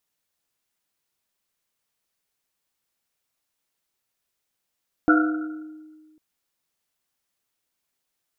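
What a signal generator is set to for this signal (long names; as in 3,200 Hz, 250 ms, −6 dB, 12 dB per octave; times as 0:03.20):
drum after Risset, pitch 310 Hz, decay 1.68 s, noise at 1,400 Hz, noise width 140 Hz, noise 35%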